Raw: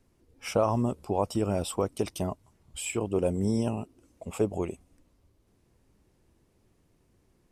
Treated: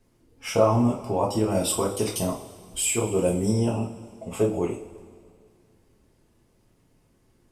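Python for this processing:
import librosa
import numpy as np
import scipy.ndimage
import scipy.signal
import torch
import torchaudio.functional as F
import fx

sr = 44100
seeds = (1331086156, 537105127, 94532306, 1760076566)

y = fx.high_shelf(x, sr, hz=4600.0, db=9.5, at=(1.5, 3.51))
y = fx.rev_double_slope(y, sr, seeds[0], early_s=0.36, late_s=2.2, knee_db=-18, drr_db=-2.5)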